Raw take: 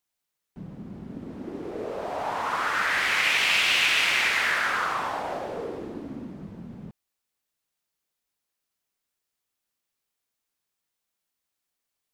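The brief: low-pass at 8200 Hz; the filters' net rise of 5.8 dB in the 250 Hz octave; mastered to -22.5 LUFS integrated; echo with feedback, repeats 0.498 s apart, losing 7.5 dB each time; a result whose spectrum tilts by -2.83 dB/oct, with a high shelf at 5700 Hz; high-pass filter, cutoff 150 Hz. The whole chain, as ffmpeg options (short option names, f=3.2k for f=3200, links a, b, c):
-af "highpass=150,lowpass=8.2k,equalizer=f=250:t=o:g=8,highshelf=f=5.7k:g=-6,aecho=1:1:498|996|1494|1992|2490:0.422|0.177|0.0744|0.0312|0.0131,volume=2dB"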